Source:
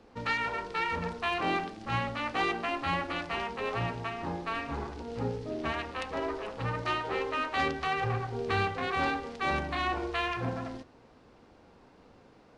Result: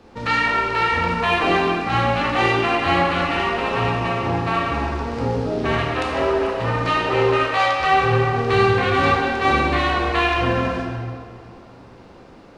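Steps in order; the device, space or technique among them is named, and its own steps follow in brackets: 7.36–7.8 steep high-pass 530 Hz 96 dB/oct; stairwell (reverb RT60 2.2 s, pre-delay 13 ms, DRR -2.5 dB); gain +8 dB

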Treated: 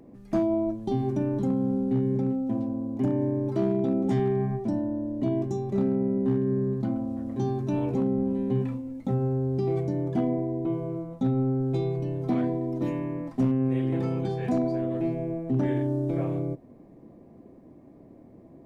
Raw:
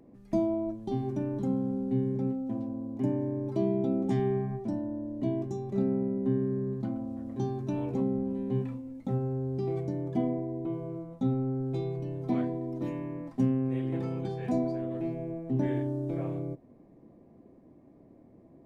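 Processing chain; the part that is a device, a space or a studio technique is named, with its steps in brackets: clipper into limiter (hard clip -21 dBFS, distortion -26 dB; limiter -23.5 dBFS, peak gain reduction 2.5 dB); gain +5.5 dB

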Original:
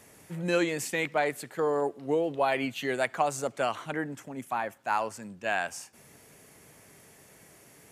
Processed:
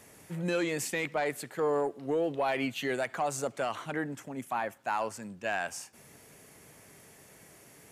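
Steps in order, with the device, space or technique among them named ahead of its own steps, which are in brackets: soft clipper into limiter (soft clip -17 dBFS, distortion -21 dB; limiter -22 dBFS, peak gain reduction 4.5 dB)

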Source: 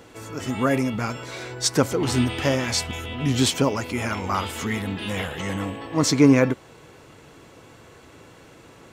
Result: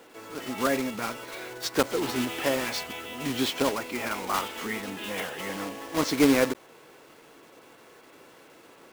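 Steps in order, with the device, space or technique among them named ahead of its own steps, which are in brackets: early digital voice recorder (BPF 280–3800 Hz; block floating point 3-bit); gain -3 dB

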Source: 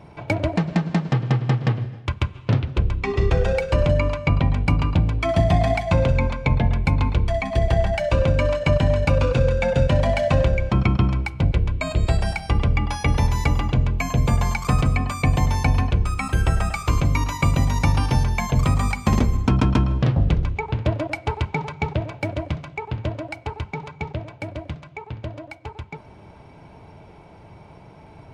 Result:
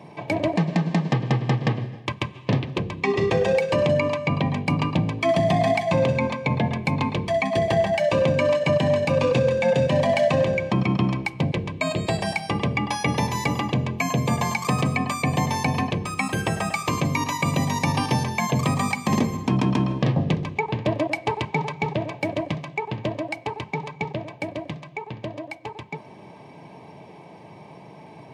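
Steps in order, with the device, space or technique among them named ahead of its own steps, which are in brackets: PA system with an anti-feedback notch (HPF 140 Hz 24 dB/oct; Butterworth band-stop 1400 Hz, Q 4.6; limiter -14 dBFS, peak gain reduction 7.5 dB); gain +3 dB

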